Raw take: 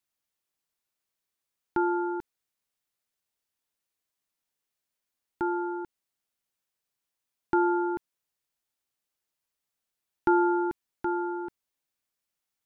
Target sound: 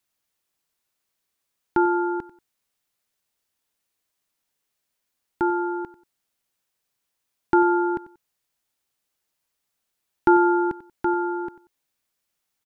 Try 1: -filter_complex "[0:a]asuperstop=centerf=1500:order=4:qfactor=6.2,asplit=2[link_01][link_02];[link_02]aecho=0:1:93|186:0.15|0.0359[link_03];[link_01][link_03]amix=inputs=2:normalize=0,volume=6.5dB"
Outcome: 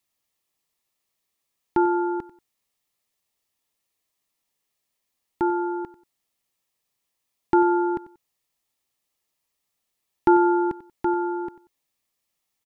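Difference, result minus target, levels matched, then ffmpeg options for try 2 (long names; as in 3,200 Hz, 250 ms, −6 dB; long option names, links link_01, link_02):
2,000 Hz band −4.0 dB
-filter_complex "[0:a]asplit=2[link_01][link_02];[link_02]aecho=0:1:93|186:0.15|0.0359[link_03];[link_01][link_03]amix=inputs=2:normalize=0,volume=6.5dB"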